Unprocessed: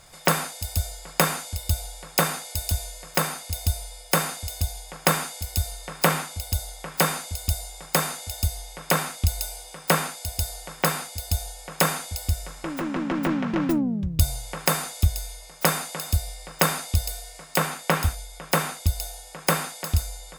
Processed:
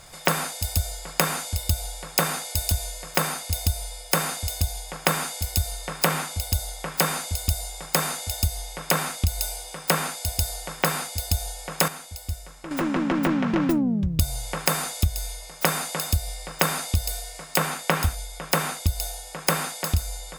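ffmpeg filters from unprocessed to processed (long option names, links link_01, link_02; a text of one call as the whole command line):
ffmpeg -i in.wav -filter_complex "[0:a]asplit=3[link_01][link_02][link_03];[link_01]atrim=end=11.882[link_04];[link_02]atrim=start=11.878:end=12.712,asetpts=PTS-STARTPTS,volume=-10dB[link_05];[link_03]atrim=start=12.708[link_06];[link_04][link_05]acrossfade=duration=0.004:curve1=hsin:curve2=hsin[link_07];[link_07][link_06]acrossfade=duration=0.004:curve1=hsin:curve2=hsin,acompressor=threshold=-23dB:ratio=3,volume=4dB" out.wav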